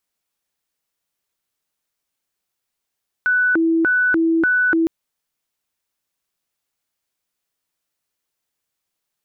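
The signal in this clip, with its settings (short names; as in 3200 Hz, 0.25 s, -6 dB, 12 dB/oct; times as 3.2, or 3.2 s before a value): siren hi-lo 328–1490 Hz 1.7/s sine -13.5 dBFS 1.61 s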